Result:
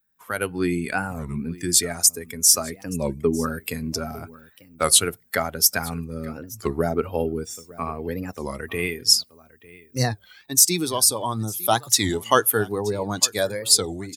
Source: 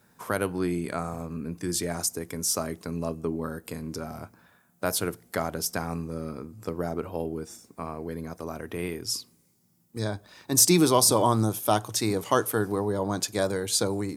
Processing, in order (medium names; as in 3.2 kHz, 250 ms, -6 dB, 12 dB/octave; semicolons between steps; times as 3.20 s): expander on every frequency bin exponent 1.5; treble shelf 2.1 kHz +10.5 dB; level rider gain up to 14.5 dB; delay 901 ms -21 dB; warped record 33 1/3 rpm, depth 250 cents; trim -1 dB